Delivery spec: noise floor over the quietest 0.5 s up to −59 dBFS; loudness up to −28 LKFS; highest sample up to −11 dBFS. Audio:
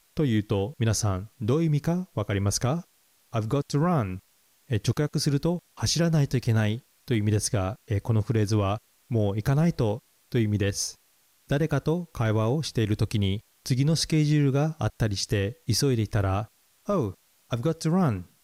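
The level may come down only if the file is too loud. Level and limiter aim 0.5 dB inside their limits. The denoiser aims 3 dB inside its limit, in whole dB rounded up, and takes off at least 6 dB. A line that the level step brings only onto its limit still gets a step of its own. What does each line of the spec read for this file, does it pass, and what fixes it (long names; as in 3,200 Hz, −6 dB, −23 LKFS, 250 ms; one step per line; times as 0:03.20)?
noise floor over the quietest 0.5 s −64 dBFS: in spec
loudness −26.5 LKFS: out of spec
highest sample −13.5 dBFS: in spec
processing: level −2 dB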